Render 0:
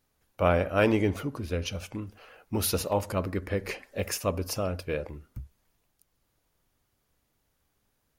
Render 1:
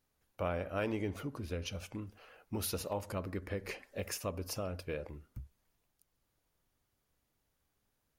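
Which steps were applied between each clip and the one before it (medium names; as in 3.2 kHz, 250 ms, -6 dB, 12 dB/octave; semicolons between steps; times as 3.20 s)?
compression 2:1, threshold -30 dBFS, peak gain reduction 7 dB; trim -6 dB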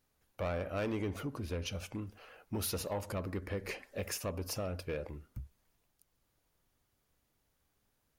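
saturation -31 dBFS, distortion -15 dB; trim +2.5 dB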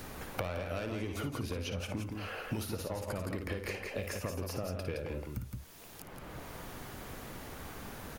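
compression, threshold -40 dBFS, peak gain reduction 8 dB; multi-tap echo 55/167 ms -8/-6.5 dB; three bands compressed up and down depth 100%; trim +4.5 dB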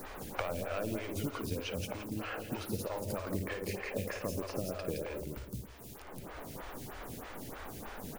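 modulation noise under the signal 15 dB; filtered feedback delay 107 ms, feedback 79%, low-pass 830 Hz, level -10 dB; lamp-driven phase shifter 3.2 Hz; trim +3 dB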